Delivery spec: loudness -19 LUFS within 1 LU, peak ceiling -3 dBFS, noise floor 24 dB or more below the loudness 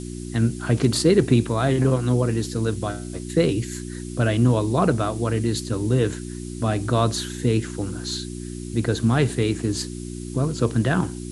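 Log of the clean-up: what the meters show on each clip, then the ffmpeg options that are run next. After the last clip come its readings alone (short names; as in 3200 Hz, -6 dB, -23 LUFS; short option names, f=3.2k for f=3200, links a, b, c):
hum 60 Hz; harmonics up to 360 Hz; hum level -31 dBFS; noise floor -33 dBFS; noise floor target -47 dBFS; loudness -22.5 LUFS; peak -5.5 dBFS; loudness target -19.0 LUFS
-> -af "bandreject=f=60:t=h:w=4,bandreject=f=120:t=h:w=4,bandreject=f=180:t=h:w=4,bandreject=f=240:t=h:w=4,bandreject=f=300:t=h:w=4,bandreject=f=360:t=h:w=4"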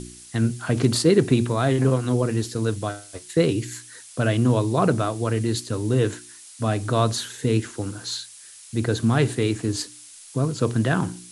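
hum none; noise floor -45 dBFS; noise floor target -48 dBFS
-> -af "afftdn=nr=6:nf=-45"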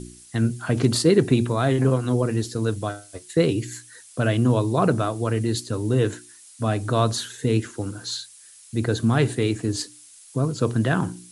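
noise floor -48 dBFS; loudness -23.5 LUFS; peak -5.5 dBFS; loudness target -19.0 LUFS
-> -af "volume=4.5dB,alimiter=limit=-3dB:level=0:latency=1"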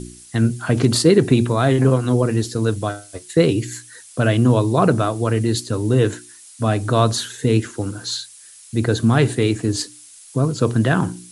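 loudness -19.0 LUFS; peak -3.0 dBFS; noise floor -44 dBFS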